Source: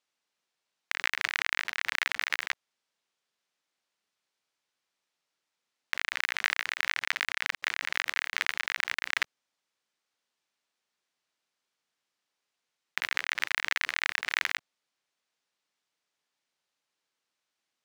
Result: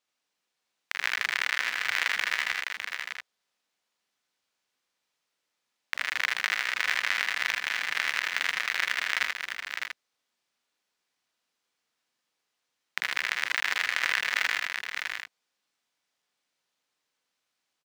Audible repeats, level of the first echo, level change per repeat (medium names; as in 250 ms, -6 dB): 5, -9.0 dB, no regular repeats